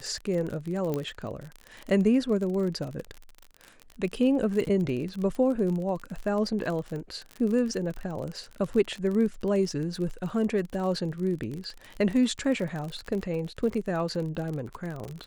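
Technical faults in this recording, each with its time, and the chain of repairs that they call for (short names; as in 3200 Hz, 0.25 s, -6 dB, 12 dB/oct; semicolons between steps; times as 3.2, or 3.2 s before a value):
crackle 41/s -32 dBFS
0.94 pop -17 dBFS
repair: de-click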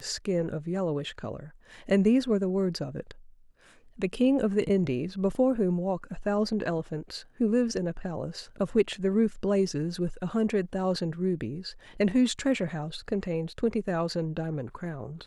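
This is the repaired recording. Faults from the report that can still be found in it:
0.94 pop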